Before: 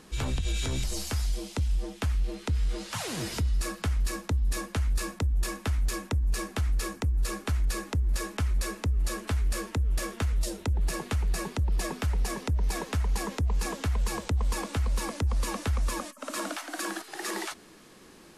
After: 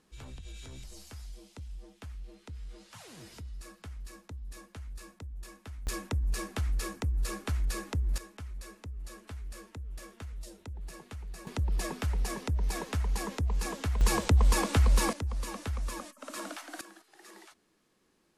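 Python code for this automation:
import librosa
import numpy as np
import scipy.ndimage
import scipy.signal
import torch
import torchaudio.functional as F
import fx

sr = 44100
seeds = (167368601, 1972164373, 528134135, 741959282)

y = fx.gain(x, sr, db=fx.steps((0.0, -16.0), (5.87, -3.5), (8.18, -14.5), (11.47, -3.0), (14.01, 4.5), (15.13, -6.5), (16.81, -19.0)))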